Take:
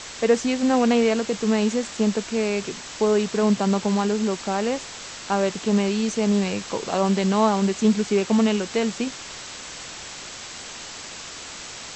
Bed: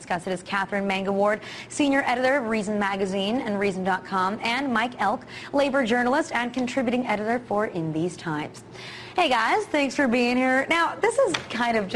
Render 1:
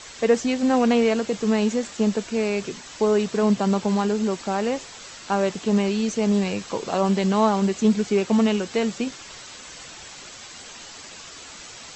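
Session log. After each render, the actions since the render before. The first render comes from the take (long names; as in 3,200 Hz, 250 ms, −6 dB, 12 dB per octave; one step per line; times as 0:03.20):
broadband denoise 7 dB, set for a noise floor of −38 dBFS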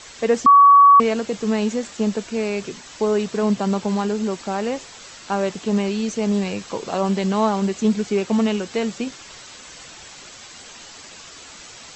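0:00.46–0:01.00: beep over 1,130 Hz −6.5 dBFS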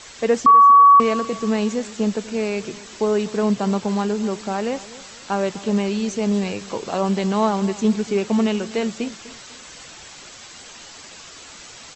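repeating echo 248 ms, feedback 35%, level −18 dB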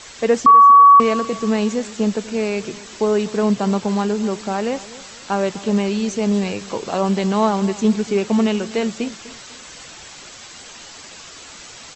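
level +2 dB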